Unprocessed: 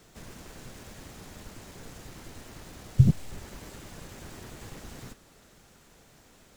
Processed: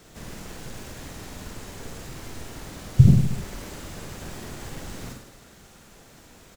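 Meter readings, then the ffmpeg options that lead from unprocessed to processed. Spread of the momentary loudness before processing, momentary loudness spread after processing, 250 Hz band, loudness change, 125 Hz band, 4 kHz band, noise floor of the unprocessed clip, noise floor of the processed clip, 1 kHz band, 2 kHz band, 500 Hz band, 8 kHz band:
23 LU, 22 LU, +7.0 dB, +5.0 dB, +6.5 dB, +6.5 dB, -58 dBFS, -51 dBFS, +6.5 dB, +6.5 dB, +7.0 dB, +6.5 dB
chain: -af "aecho=1:1:50|105|165.5|232|305.3:0.631|0.398|0.251|0.158|0.1,volume=4.5dB"

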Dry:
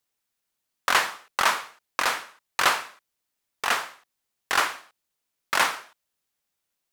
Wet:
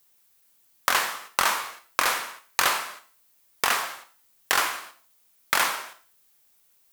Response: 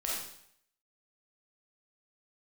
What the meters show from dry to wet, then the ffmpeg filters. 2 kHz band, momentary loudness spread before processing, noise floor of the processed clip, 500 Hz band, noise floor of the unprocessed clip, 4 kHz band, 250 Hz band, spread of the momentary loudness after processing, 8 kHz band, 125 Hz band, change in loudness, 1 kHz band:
-0.5 dB, 11 LU, -63 dBFS, -1.0 dB, -81 dBFS, +0.5 dB, -0.5 dB, 12 LU, +3.5 dB, 0.0 dB, 0.0 dB, -0.5 dB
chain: -filter_complex "[0:a]highshelf=f=10k:g=11.5,acompressor=threshold=-32dB:ratio=4,asplit=2[a][b];[1:a]atrim=start_sample=2205,asetrate=74970,aresample=44100[c];[b][c]afir=irnorm=-1:irlink=0,volume=-5dB[d];[a][d]amix=inputs=2:normalize=0,volume=8dB"

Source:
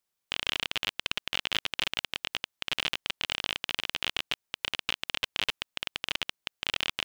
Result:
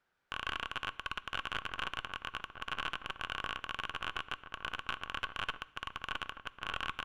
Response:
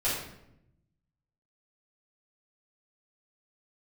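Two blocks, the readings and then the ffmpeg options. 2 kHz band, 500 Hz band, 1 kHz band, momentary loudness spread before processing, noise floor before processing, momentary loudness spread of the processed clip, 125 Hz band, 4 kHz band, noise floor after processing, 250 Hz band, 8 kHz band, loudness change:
-5.0 dB, -6.0 dB, +2.0 dB, 5 LU, -84 dBFS, 5 LU, -2.5 dB, -11.5 dB, -67 dBFS, -5.5 dB, -14.5 dB, -8.0 dB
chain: -filter_complex "[0:a]aemphasis=mode=reproduction:type=riaa,bandreject=f=1.1k:w=21,asplit=2[a][b];[b]highpass=f=720:p=1,volume=19dB,asoftclip=type=tanh:threshold=-10.5dB[c];[a][c]amix=inputs=2:normalize=0,lowpass=f=2.2k:p=1,volume=-6dB,equalizer=f=1.5k:w=3.7:g=10,asoftclip=type=tanh:threshold=-22.5dB,acrossover=split=3500[d][e];[e]acompressor=threshold=-50dB:ratio=4:attack=1:release=60[f];[d][f]amix=inputs=2:normalize=0,asplit=2[g][h];[h]adelay=1224,volume=-7dB,highshelf=f=4k:g=-27.6[i];[g][i]amix=inputs=2:normalize=0,asplit=2[j][k];[1:a]atrim=start_sample=2205,afade=t=out:st=0.21:d=0.01,atrim=end_sample=9702,asetrate=33957,aresample=44100[l];[k][l]afir=irnorm=-1:irlink=0,volume=-27dB[m];[j][m]amix=inputs=2:normalize=0,volume=-2dB"

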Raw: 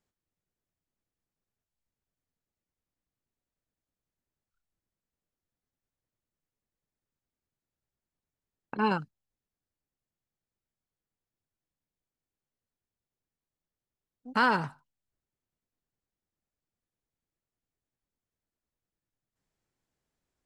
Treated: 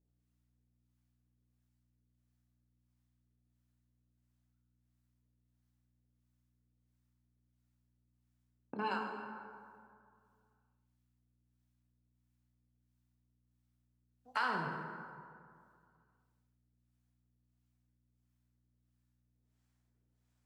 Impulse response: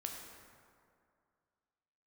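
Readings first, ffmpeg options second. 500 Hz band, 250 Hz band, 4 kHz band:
-9.5 dB, -11.5 dB, -8.5 dB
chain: -filter_complex "[0:a]highpass=200,acrossover=split=590[a][b];[a]aeval=exprs='val(0)*(1-1/2+1/2*cos(2*PI*1.5*n/s))':c=same[c];[b]aeval=exprs='val(0)*(1-1/2-1/2*cos(2*PI*1.5*n/s))':c=same[d];[c][d]amix=inputs=2:normalize=0,aeval=exprs='val(0)+0.000112*(sin(2*PI*60*n/s)+sin(2*PI*2*60*n/s)/2+sin(2*PI*3*60*n/s)/3+sin(2*PI*4*60*n/s)/4+sin(2*PI*5*60*n/s)/5)':c=same,acompressor=threshold=-35dB:ratio=3[e];[1:a]atrim=start_sample=2205[f];[e][f]afir=irnorm=-1:irlink=0,volume=4dB"

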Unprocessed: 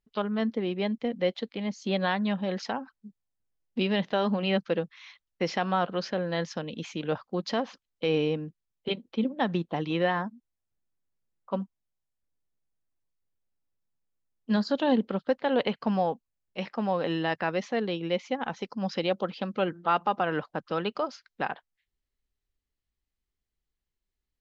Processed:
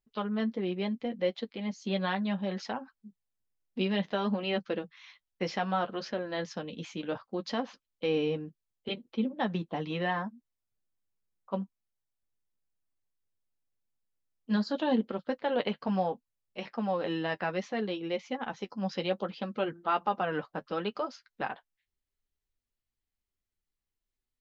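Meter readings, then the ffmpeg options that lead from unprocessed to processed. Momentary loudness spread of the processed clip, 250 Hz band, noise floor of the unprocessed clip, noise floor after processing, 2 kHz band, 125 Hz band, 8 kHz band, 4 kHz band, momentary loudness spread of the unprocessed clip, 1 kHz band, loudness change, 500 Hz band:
9 LU, -3.0 dB, under -85 dBFS, under -85 dBFS, -3.5 dB, -4.0 dB, n/a, -3.5 dB, 9 LU, -3.5 dB, -3.5 dB, -4.0 dB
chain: -af "flanger=delay=8:depth=3:regen=-31:speed=0.66:shape=triangular"

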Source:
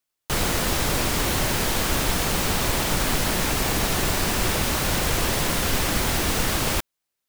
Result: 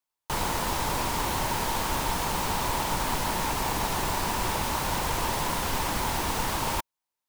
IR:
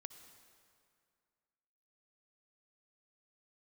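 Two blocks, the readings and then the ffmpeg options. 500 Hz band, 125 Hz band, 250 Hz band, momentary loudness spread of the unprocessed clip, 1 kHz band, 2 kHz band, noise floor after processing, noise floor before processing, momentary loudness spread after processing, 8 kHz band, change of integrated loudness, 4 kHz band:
-5.5 dB, -7.0 dB, -7.0 dB, 0 LU, +1.0 dB, -6.0 dB, under -85 dBFS, -82 dBFS, 0 LU, -7.0 dB, -5.5 dB, -7.0 dB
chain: -af "equalizer=f=930:w=3.1:g=12.5,volume=-7dB"

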